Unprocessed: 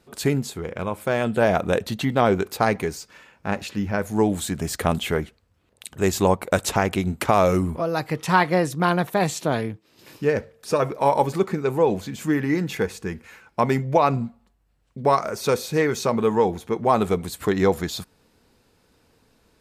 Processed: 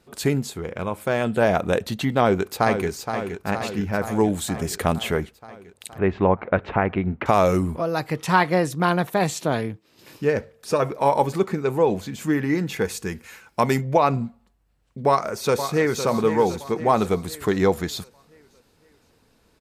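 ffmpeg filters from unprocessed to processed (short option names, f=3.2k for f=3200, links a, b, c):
-filter_complex "[0:a]asplit=2[a][b];[b]afade=t=in:st=2.19:d=0.01,afade=t=out:st=2.88:d=0.01,aecho=0:1:470|940|1410|1880|2350|2820|3290|3760|4230|4700|5170:0.398107|0.278675|0.195073|0.136551|0.0955855|0.0669099|0.0468369|0.0327858|0.0229501|0.0160651|0.0112455[c];[a][c]amix=inputs=2:normalize=0,asettb=1/sr,asplit=3[d][e][f];[d]atrim=end=5.984[g];[e]atrim=start=5.98:end=7.26,asetpts=PTS-STARTPTS,afade=t=in:d=0.004:c=qsin,afade=t=out:st=1.276:d=0.004:c=qsin,lowpass=f=2.4k:w=0.5412,lowpass=f=2.4k:w=1.3066[h];[f]atrim=start=7.256[i];[g][h]acrossfade=d=0.004:c1=hsin:c2=qsin[j];[j][i]acrossfade=d=0.004:c1=qsin:c2=hsin,asettb=1/sr,asplit=3[k][l][m];[k]atrim=end=12.854[n];[l]atrim=start=12.85:end=13.81,asetpts=PTS-STARTPTS,afade=t=in:d=0.004:c=qsin,afade=t=out:st=0.956:d=0.004:c=qsin,highshelf=f=3.9k:g=10[o];[m]atrim=start=13.806[p];[n][o]acrossfade=d=0.004:c1=hsin:c2=qsin[q];[q][p]acrossfade=d=0.004:c1=qsin:c2=hsin,asplit=2[r][s];[s]afade=t=in:st=15.07:d=0.01,afade=t=out:st=16.05:d=0.01,aecho=0:1:510|1020|1530|2040|2550|3060:0.334965|0.167483|0.0837414|0.0418707|0.0209353|0.0104677[t];[r][t]amix=inputs=2:normalize=0"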